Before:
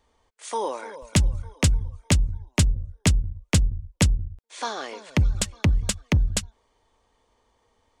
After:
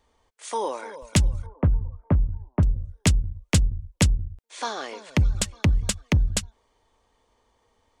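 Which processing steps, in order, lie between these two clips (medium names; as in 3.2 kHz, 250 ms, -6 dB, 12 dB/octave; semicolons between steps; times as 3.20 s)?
1.46–2.63 s: low-pass 1.3 kHz 24 dB/octave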